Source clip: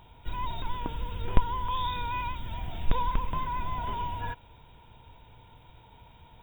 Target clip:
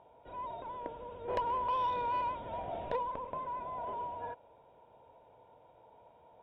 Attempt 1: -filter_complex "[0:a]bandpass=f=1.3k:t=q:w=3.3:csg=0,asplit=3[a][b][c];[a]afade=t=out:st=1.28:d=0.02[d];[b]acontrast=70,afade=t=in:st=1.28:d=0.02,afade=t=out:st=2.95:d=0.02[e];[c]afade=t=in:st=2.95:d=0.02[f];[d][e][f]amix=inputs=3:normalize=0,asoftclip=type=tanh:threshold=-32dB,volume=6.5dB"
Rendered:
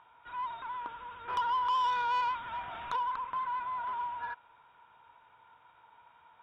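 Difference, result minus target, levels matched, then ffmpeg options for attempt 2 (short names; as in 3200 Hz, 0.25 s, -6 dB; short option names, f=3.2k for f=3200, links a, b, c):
500 Hz band -16.0 dB
-filter_complex "[0:a]bandpass=f=580:t=q:w=3.3:csg=0,asplit=3[a][b][c];[a]afade=t=out:st=1.28:d=0.02[d];[b]acontrast=70,afade=t=in:st=1.28:d=0.02,afade=t=out:st=2.95:d=0.02[e];[c]afade=t=in:st=2.95:d=0.02[f];[d][e][f]amix=inputs=3:normalize=0,asoftclip=type=tanh:threshold=-32dB,volume=6.5dB"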